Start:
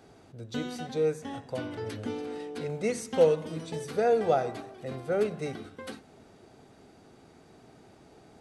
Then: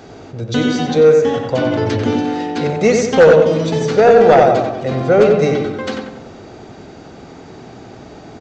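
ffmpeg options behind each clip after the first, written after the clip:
ffmpeg -i in.wav -filter_complex "[0:a]asplit=2[link_01][link_02];[link_02]adelay=92,lowpass=frequency=2400:poles=1,volume=-3dB,asplit=2[link_03][link_04];[link_04]adelay=92,lowpass=frequency=2400:poles=1,volume=0.5,asplit=2[link_05][link_06];[link_06]adelay=92,lowpass=frequency=2400:poles=1,volume=0.5,asplit=2[link_07][link_08];[link_08]adelay=92,lowpass=frequency=2400:poles=1,volume=0.5,asplit=2[link_09][link_10];[link_10]adelay=92,lowpass=frequency=2400:poles=1,volume=0.5,asplit=2[link_11][link_12];[link_12]adelay=92,lowpass=frequency=2400:poles=1,volume=0.5,asplit=2[link_13][link_14];[link_14]adelay=92,lowpass=frequency=2400:poles=1,volume=0.5[link_15];[link_01][link_03][link_05][link_07][link_09][link_11][link_13][link_15]amix=inputs=8:normalize=0,aresample=16000,aeval=exprs='0.316*sin(PI/2*2*val(0)/0.316)':channel_layout=same,aresample=44100,volume=7dB" out.wav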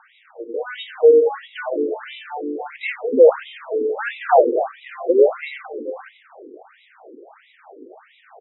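ffmpeg -i in.wav -af "afftfilt=real='re*between(b*sr/1024,350*pow(2800/350,0.5+0.5*sin(2*PI*1.5*pts/sr))/1.41,350*pow(2800/350,0.5+0.5*sin(2*PI*1.5*pts/sr))*1.41)':imag='im*between(b*sr/1024,350*pow(2800/350,0.5+0.5*sin(2*PI*1.5*pts/sr))/1.41,350*pow(2800/350,0.5+0.5*sin(2*PI*1.5*pts/sr))*1.41)':win_size=1024:overlap=0.75,volume=-1dB" out.wav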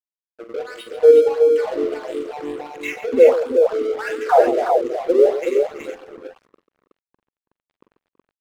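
ffmpeg -i in.wav -filter_complex "[0:a]aeval=exprs='sgn(val(0))*max(abs(val(0))-0.0188,0)':channel_layout=same,asplit=2[link_01][link_02];[link_02]aecho=0:1:43|52|140|328|371:0.335|0.15|0.237|0.158|0.596[link_03];[link_01][link_03]amix=inputs=2:normalize=0" out.wav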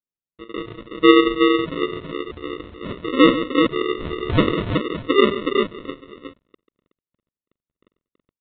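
ffmpeg -i in.wav -af "equalizer=frequency=750:width_type=o:width=0.46:gain=-8.5,aresample=8000,acrusher=samples=10:mix=1:aa=0.000001,aresample=44100,volume=-1dB" out.wav

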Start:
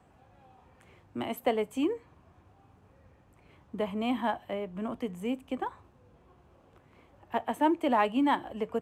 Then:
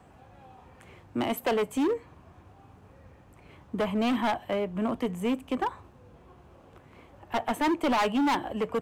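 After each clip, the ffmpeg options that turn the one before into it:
ffmpeg -i in.wav -af "volume=29dB,asoftclip=hard,volume=-29dB,volume=6.5dB" out.wav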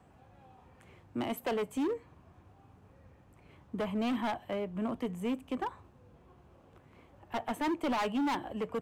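ffmpeg -i in.wav -af "equalizer=frequency=140:width_type=o:width=2.4:gain=2.5,volume=-7dB" out.wav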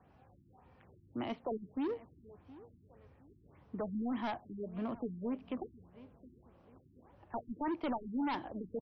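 ffmpeg -i in.wav -filter_complex "[0:a]asplit=2[link_01][link_02];[link_02]adelay=717,lowpass=frequency=4300:poles=1,volume=-19dB,asplit=2[link_03][link_04];[link_04]adelay=717,lowpass=frequency=4300:poles=1,volume=0.34,asplit=2[link_05][link_06];[link_06]adelay=717,lowpass=frequency=4300:poles=1,volume=0.34[link_07];[link_01][link_03][link_05][link_07]amix=inputs=4:normalize=0,afftfilt=real='re*lt(b*sr/1024,360*pow(6200/360,0.5+0.5*sin(2*PI*1.7*pts/sr)))':imag='im*lt(b*sr/1024,360*pow(6200/360,0.5+0.5*sin(2*PI*1.7*pts/sr)))':win_size=1024:overlap=0.75,volume=-4dB" out.wav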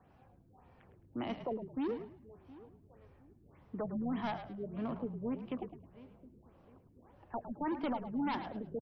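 ffmpeg -i in.wav -filter_complex "[0:a]asplit=4[link_01][link_02][link_03][link_04];[link_02]adelay=107,afreqshift=-51,volume=-10dB[link_05];[link_03]adelay=214,afreqshift=-102,volume=-20.5dB[link_06];[link_04]adelay=321,afreqshift=-153,volume=-30.9dB[link_07];[link_01][link_05][link_06][link_07]amix=inputs=4:normalize=0" out.wav

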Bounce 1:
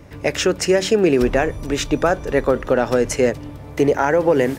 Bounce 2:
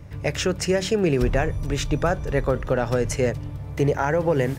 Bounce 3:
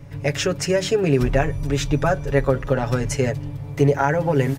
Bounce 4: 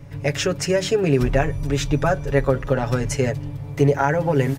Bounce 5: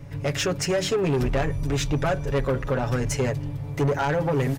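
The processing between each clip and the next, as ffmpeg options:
ffmpeg -i in.wav -af "lowshelf=frequency=190:width_type=q:width=1.5:gain=7.5,volume=-5dB" out.wav
ffmpeg -i in.wav -af "aecho=1:1:7.2:0.74" out.wav
ffmpeg -i in.wav -af anull out.wav
ffmpeg -i in.wav -af "asoftclip=type=tanh:threshold=-18dB" out.wav

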